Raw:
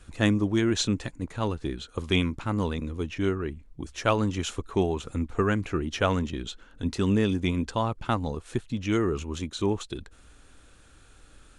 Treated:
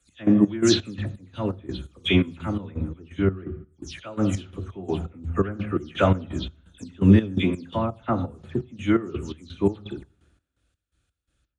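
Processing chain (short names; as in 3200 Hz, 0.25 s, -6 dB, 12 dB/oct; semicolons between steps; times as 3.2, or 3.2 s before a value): spectral delay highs early, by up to 0.149 s; bell 970 Hz -5 dB 0.41 oct; on a send at -10 dB: reverb RT60 1.1 s, pre-delay 3 ms; on the sum: step gate "x..xx..x" 169 bpm -12 dB; HPF 74 Hz; high shelf 3600 Hz -8.5 dB; three-band expander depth 70%; gain +3.5 dB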